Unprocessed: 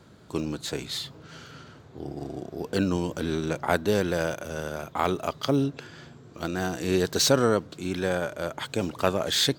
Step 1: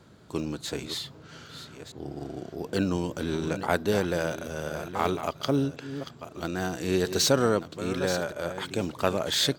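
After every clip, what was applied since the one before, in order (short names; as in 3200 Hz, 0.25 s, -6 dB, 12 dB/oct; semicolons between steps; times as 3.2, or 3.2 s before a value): reverse delay 0.64 s, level -11 dB; gain -1.5 dB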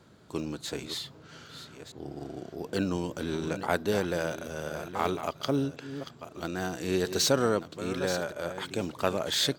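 low shelf 130 Hz -3.5 dB; gain -2 dB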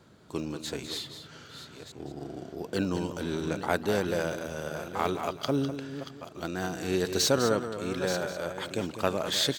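echo 0.202 s -10 dB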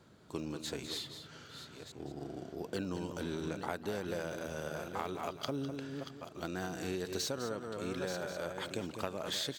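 compressor 12:1, threshold -29 dBFS, peak gain reduction 11.5 dB; gain -4 dB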